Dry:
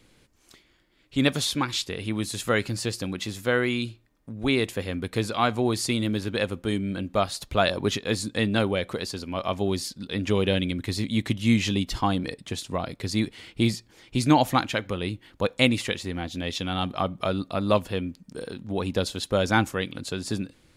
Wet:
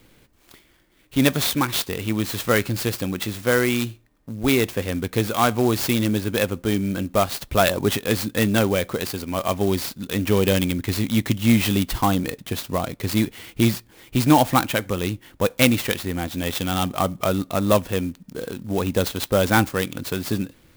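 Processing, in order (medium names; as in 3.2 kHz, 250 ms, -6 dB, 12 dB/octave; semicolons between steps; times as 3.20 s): in parallel at -8 dB: overload inside the chain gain 19 dB; on the sum: sampling jitter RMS 0.038 ms; trim +2 dB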